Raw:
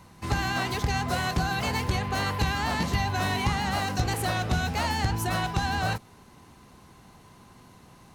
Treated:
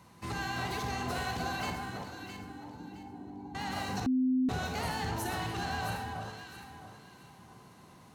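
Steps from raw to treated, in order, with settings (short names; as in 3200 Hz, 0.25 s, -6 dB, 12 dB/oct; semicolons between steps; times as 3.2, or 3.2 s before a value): HPF 83 Hz; limiter -22 dBFS, peak gain reduction 9.5 dB; 1.7–3.55 vocal tract filter u; echo with dull and thin repeats by turns 0.332 s, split 1400 Hz, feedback 53%, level -3 dB; reverb, pre-delay 39 ms, DRR 5 dB; 4.06–4.49 bleep 257 Hz -19 dBFS; gain -5.5 dB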